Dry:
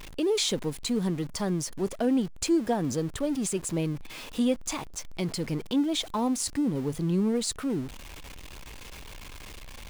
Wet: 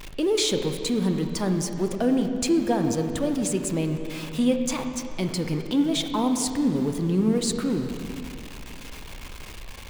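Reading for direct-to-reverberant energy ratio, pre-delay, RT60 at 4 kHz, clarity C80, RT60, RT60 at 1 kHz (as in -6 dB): 5.5 dB, 29 ms, 2.3 s, 7.0 dB, 2.5 s, 2.3 s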